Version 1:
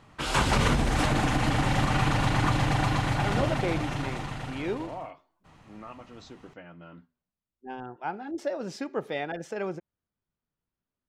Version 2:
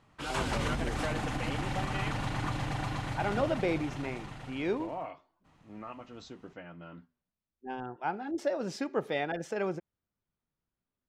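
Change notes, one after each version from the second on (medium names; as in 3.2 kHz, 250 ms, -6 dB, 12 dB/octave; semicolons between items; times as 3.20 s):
background -9.0 dB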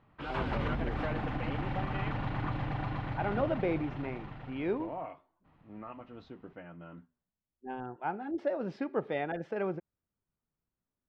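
master: add distance through air 370 m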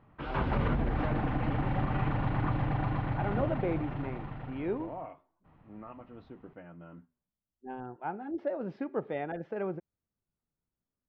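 background +5.0 dB; master: add tape spacing loss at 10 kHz 21 dB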